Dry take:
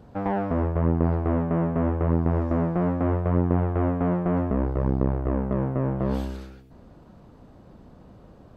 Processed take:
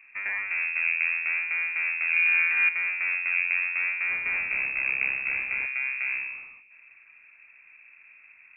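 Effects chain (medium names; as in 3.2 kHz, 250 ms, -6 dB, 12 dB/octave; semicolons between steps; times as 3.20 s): 2.10–2.69 s: flutter echo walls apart 5.1 m, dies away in 1 s; 4.09–5.66 s: modulation noise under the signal 10 dB; frequency inversion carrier 2.6 kHz; trim -5 dB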